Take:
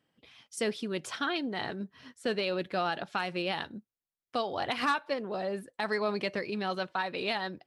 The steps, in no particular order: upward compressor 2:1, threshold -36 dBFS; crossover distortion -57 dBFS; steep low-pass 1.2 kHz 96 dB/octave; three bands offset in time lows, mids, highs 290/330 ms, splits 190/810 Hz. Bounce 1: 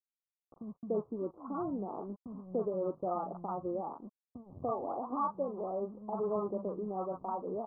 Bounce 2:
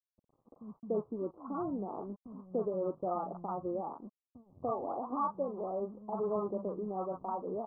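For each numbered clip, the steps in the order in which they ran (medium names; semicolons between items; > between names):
three bands offset in time > crossover distortion > upward compressor > steep low-pass; upward compressor > three bands offset in time > crossover distortion > steep low-pass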